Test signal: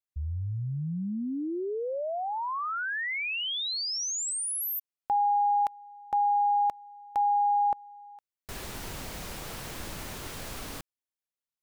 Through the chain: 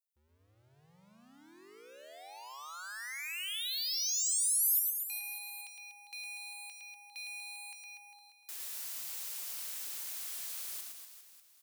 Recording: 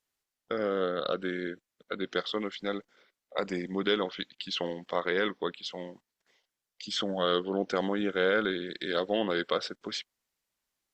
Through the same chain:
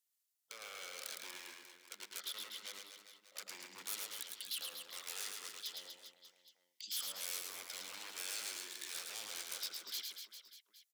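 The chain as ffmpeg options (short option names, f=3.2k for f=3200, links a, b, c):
-af "aeval=exprs='0.0316*(abs(mod(val(0)/0.0316+3,4)-2)-1)':c=same,aderivative,aecho=1:1:110|242|400.4|590.5|818.6:0.631|0.398|0.251|0.158|0.1,volume=-1dB"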